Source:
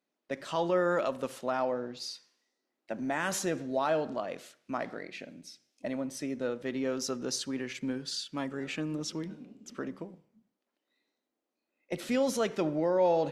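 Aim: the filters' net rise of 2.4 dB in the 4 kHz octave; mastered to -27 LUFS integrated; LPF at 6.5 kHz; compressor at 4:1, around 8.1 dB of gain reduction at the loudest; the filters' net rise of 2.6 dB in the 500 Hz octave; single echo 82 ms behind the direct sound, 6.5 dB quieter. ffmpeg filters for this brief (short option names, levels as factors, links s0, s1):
-af "lowpass=6500,equalizer=f=500:t=o:g=3,equalizer=f=4000:t=o:g=4,acompressor=threshold=0.0316:ratio=4,aecho=1:1:82:0.473,volume=2.51"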